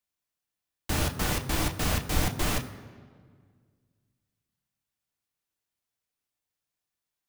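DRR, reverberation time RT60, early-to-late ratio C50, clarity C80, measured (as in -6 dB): 4.0 dB, 1.8 s, 13.0 dB, 14.0 dB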